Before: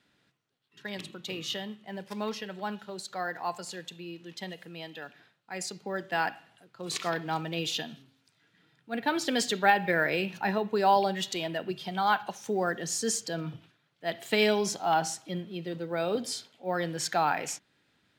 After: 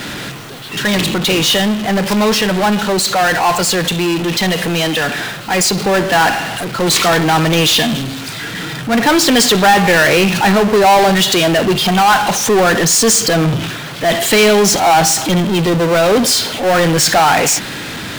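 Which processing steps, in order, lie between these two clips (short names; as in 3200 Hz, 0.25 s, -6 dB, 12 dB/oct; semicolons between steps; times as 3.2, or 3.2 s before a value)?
power-law curve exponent 0.35; mismatched tape noise reduction decoder only; gain +5.5 dB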